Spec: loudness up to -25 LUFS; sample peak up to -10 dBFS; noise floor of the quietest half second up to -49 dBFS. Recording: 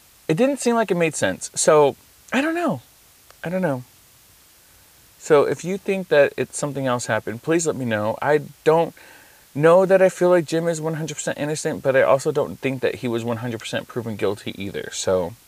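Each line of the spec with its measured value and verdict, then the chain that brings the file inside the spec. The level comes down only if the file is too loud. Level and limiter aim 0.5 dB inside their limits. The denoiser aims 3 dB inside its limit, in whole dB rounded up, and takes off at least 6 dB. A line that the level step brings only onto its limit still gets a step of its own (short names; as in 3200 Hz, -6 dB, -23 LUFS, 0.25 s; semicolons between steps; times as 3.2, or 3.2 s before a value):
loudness -21.0 LUFS: fail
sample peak -4.5 dBFS: fail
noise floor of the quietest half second -52 dBFS: OK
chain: gain -4.5 dB; limiter -10.5 dBFS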